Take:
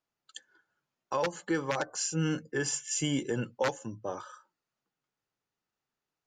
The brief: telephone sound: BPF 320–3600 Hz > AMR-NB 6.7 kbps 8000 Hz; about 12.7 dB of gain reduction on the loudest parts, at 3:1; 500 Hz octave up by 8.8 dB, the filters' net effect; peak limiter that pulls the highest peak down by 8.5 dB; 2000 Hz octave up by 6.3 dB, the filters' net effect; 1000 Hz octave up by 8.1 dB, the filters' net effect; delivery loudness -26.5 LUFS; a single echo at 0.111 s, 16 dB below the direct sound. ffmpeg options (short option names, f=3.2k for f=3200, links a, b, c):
-af "equalizer=f=500:t=o:g=9,equalizer=f=1k:t=o:g=6,equalizer=f=2k:t=o:g=5.5,acompressor=threshold=-33dB:ratio=3,alimiter=level_in=2.5dB:limit=-24dB:level=0:latency=1,volume=-2.5dB,highpass=320,lowpass=3.6k,aecho=1:1:111:0.158,volume=14.5dB" -ar 8000 -c:a libopencore_amrnb -b:a 6700